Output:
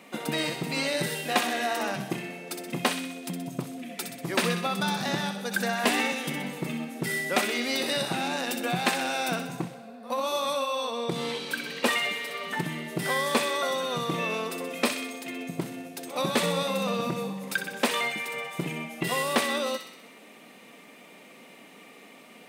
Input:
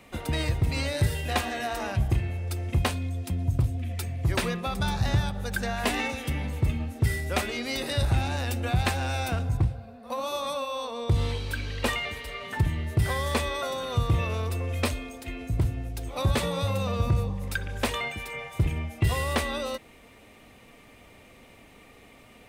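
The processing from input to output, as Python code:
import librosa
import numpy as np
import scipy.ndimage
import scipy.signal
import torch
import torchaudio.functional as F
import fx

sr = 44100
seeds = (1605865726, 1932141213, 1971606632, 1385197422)

p1 = fx.brickwall_highpass(x, sr, low_hz=150.0)
p2 = p1 + fx.echo_wet_highpass(p1, sr, ms=63, feedback_pct=58, hz=1700.0, wet_db=-6, dry=0)
y = F.gain(torch.from_numpy(p2), 2.5).numpy()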